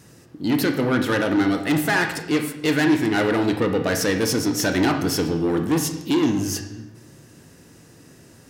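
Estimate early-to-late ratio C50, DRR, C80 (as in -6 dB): 7.5 dB, 5.5 dB, 10.0 dB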